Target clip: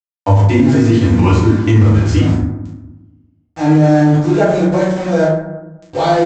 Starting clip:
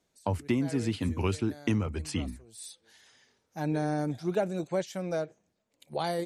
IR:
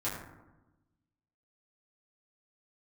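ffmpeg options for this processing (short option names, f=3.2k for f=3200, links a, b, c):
-filter_complex "[0:a]aresample=16000,aeval=exprs='val(0)*gte(abs(val(0)),0.0119)':c=same,aresample=44100,asplit=2[a][b];[b]adelay=38,volume=-4.5dB[c];[a][c]amix=inputs=2:normalize=0[d];[1:a]atrim=start_sample=2205[e];[d][e]afir=irnorm=-1:irlink=0,alimiter=level_in=12dB:limit=-1dB:release=50:level=0:latency=1,volume=-1dB"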